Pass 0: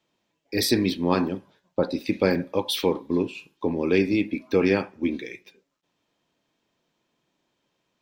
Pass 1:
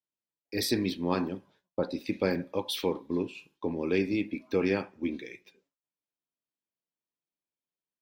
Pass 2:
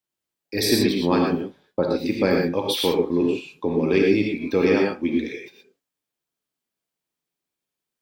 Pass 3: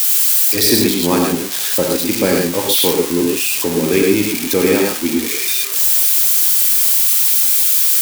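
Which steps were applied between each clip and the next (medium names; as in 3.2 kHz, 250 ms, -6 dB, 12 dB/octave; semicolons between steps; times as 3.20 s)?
gate with hold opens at -50 dBFS; trim -6.5 dB
gated-style reverb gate 140 ms rising, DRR 0.5 dB; trim +6.5 dB
zero-crossing glitches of -12.5 dBFS; trim +4.5 dB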